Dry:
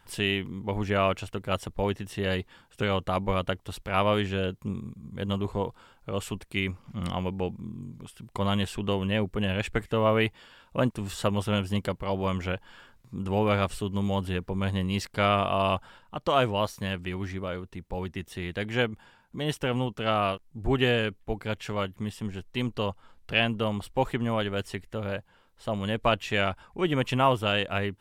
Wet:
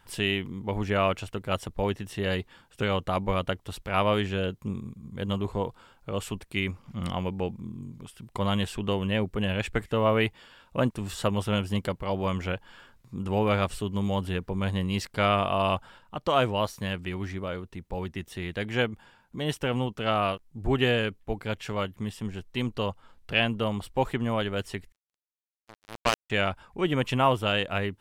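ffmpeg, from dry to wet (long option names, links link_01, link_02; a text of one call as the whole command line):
ffmpeg -i in.wav -filter_complex "[0:a]asettb=1/sr,asplit=3[link_01][link_02][link_03];[link_01]atrim=end=24.924[link_04];[link_02]atrim=start=24.92:end=26.3,asetpts=PTS-STARTPTS,afade=type=in:duration=0.004:curve=qsin,afade=type=out:start_time=1.376:duration=0.004:curve=qsin,acrusher=bits=2:mix=0:aa=0.5[link_05];[link_03]atrim=start=26.296[link_06];[link_04][link_05]acrossfade=duration=0.004:curve1=hsin:curve2=qsin[link_07];[link_07][link_06]acrossfade=duration=0.004:curve1=qsin:curve2=hsin" out.wav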